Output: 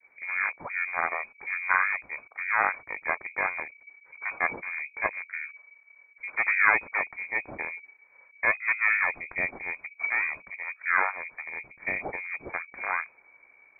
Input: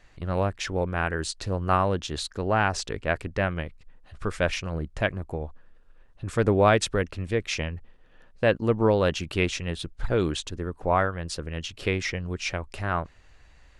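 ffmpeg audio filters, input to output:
-af "adynamicequalizer=threshold=0.0158:dfrequency=1500:dqfactor=0.75:tfrequency=1500:tqfactor=0.75:attack=5:release=100:ratio=0.375:range=3:mode=boostabove:tftype=bell,aeval=exprs='val(0)*sin(2*PI*220*n/s)':c=same,lowpass=f=2100:t=q:w=0.5098,lowpass=f=2100:t=q:w=0.6013,lowpass=f=2100:t=q:w=0.9,lowpass=f=2100:t=q:w=2.563,afreqshift=-2500,volume=0.794"

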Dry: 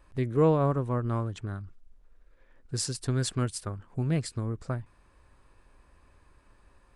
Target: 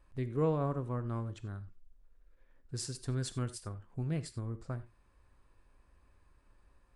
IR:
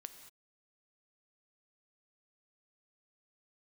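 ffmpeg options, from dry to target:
-filter_complex "[0:a]lowshelf=f=160:g=4[s0];[1:a]atrim=start_sample=2205,atrim=end_sample=4410[s1];[s0][s1]afir=irnorm=-1:irlink=0,volume=0.708"

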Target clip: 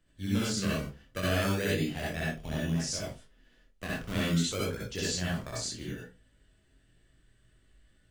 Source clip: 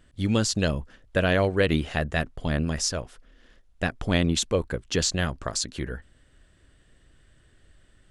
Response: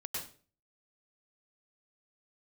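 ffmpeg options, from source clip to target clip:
-filter_complex "[0:a]acrossover=split=120|1100[s0][s1][s2];[s1]acrusher=samples=20:mix=1:aa=0.000001:lfo=1:lforange=12:lforate=0.3[s3];[s0][s3][s2]amix=inputs=3:normalize=0,flanger=delay=19:depth=7.2:speed=0.63[s4];[1:a]atrim=start_sample=2205,asetrate=70560,aresample=44100[s5];[s4][s5]afir=irnorm=-1:irlink=0"

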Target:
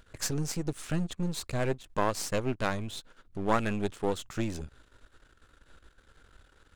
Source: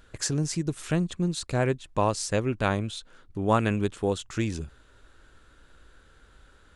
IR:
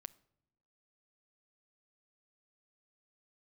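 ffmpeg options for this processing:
-af "aeval=exprs='if(lt(val(0),0),0.251*val(0),val(0))':c=same"

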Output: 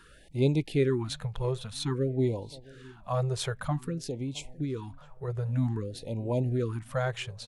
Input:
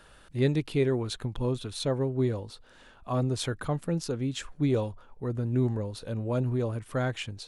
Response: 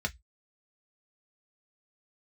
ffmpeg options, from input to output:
-filter_complex "[0:a]asettb=1/sr,asplit=3[s0][s1][s2];[s0]atrim=end=3.784[s3];[s1]atrim=start=3.78:end=5.28,asetpts=PTS-STARTPTS,afade=t=in:d=0.004:c=qsin,afade=t=out:st=1.496:d=0.004:c=qsin,acompressor=threshold=0.0316:ratio=6[s4];[s2]atrim=start=5.276[s5];[s3][s4]acrossfade=d=0.004:c1=hsin:c2=qsin[s6];[s6][s5]acrossfade=d=0.004:c1=qsin:c2=hsin,asplit=2[s7][s8];[s8]adelay=663,lowpass=f=2400:p=1,volume=0.0708,asplit=2[s9][s10];[s10]adelay=663,lowpass=f=2400:p=1,volume=0.52,asplit=2[s11][s12];[s12]adelay=663,lowpass=f=2400:p=1,volume=0.52[s13];[s7][s9][s11][s13]amix=inputs=4:normalize=0,asplit=2[s14][s15];[1:a]atrim=start_sample=2205[s16];[s15][s16]afir=irnorm=-1:irlink=0,volume=0.075[s17];[s14][s17]amix=inputs=2:normalize=0,afftfilt=real='re*(1-between(b*sr/1024,250*pow(1500/250,0.5+0.5*sin(2*PI*0.52*pts/sr))/1.41,250*pow(1500/250,0.5+0.5*sin(2*PI*0.52*pts/sr))*1.41))':imag='im*(1-between(b*sr/1024,250*pow(1500/250,0.5+0.5*sin(2*PI*0.52*pts/sr))/1.41,250*pow(1500/250,0.5+0.5*sin(2*PI*0.52*pts/sr))*1.41))':win_size=1024:overlap=0.75"

